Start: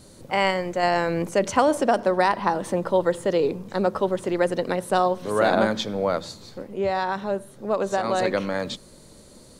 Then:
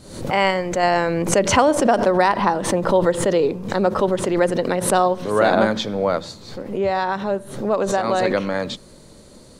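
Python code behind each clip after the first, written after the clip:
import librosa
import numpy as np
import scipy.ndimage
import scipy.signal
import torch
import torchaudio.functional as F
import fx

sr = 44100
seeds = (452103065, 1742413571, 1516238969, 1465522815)

y = fx.high_shelf(x, sr, hz=8800.0, db=-7.5)
y = fx.pre_swell(y, sr, db_per_s=84.0)
y = y * librosa.db_to_amplitude(3.5)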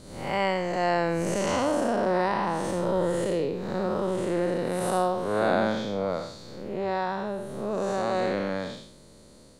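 y = fx.spec_blur(x, sr, span_ms=207.0)
y = y * librosa.db_to_amplitude(-5.0)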